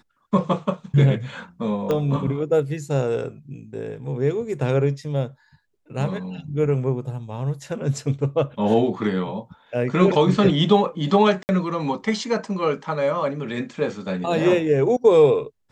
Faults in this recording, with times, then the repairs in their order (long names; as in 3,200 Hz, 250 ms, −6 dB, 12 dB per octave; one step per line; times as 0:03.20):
0:01.91: click −12 dBFS
0:11.43–0:11.49: drop-out 59 ms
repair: click removal
repair the gap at 0:11.43, 59 ms